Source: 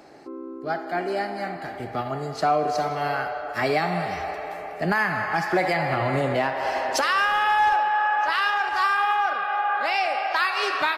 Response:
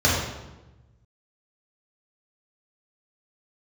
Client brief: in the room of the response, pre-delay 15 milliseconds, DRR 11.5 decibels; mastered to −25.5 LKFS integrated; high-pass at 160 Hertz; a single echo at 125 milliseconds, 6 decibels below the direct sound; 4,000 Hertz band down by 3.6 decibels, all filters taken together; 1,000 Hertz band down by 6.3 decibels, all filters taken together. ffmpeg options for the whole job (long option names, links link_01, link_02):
-filter_complex "[0:a]highpass=160,equalizer=frequency=1000:width_type=o:gain=-8.5,equalizer=frequency=4000:width_type=o:gain=-4.5,aecho=1:1:125:0.501,asplit=2[link_01][link_02];[1:a]atrim=start_sample=2205,adelay=15[link_03];[link_02][link_03]afir=irnorm=-1:irlink=0,volume=-30.5dB[link_04];[link_01][link_04]amix=inputs=2:normalize=0,volume=1.5dB"